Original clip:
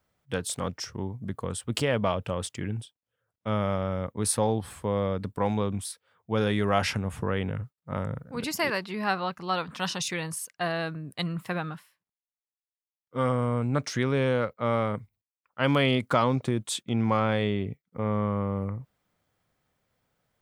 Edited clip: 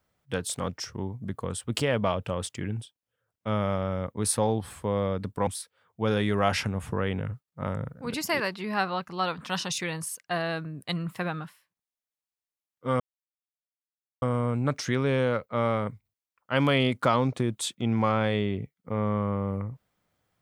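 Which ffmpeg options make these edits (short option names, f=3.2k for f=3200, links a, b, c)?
-filter_complex "[0:a]asplit=3[a][b][c];[a]atrim=end=5.472[d];[b]atrim=start=5.768:end=13.3,asetpts=PTS-STARTPTS,afade=t=out:st=7.528:d=0.004:c=hsin,apad=pad_dur=1.22[e];[c]atrim=start=13.3,asetpts=PTS-STARTPTS,afade=t=in:d=0.004:c=hsin[f];[e][f]concat=n=2:v=0:a=1[g];[d][g]acrossfade=d=0.004:c1=hsin:c2=hsin"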